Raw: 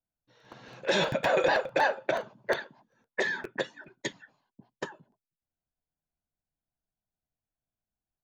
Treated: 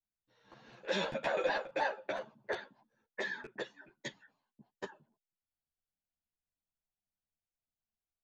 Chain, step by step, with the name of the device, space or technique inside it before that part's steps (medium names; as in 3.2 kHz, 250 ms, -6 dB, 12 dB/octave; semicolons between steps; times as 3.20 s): 0.76–2.10 s: peaking EQ 110 Hz -12.5 dB 0.52 oct; string-machine ensemble chorus (three-phase chorus; low-pass 7.1 kHz 12 dB/octave); trim -5 dB